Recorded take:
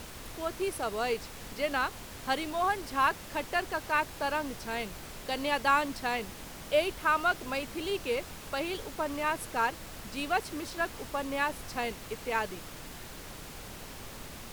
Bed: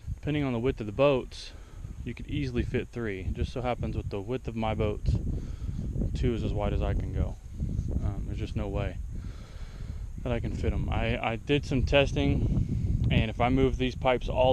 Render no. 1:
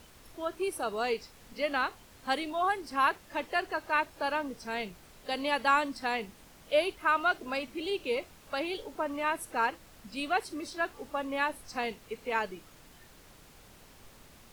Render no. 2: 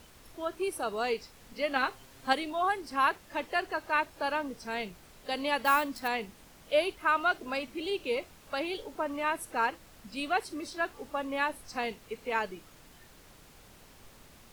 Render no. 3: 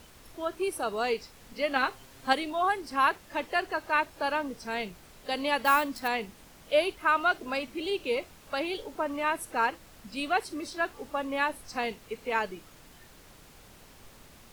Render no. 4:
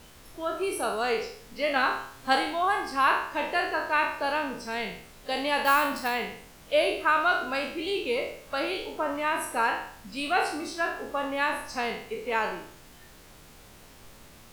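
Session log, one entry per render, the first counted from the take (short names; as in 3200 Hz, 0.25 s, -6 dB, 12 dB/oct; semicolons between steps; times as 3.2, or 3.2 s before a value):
noise print and reduce 11 dB
1.75–2.33 comb 7.5 ms; 5.63–6.08 sample-rate reducer 16000 Hz
gain +2 dB
spectral trails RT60 0.61 s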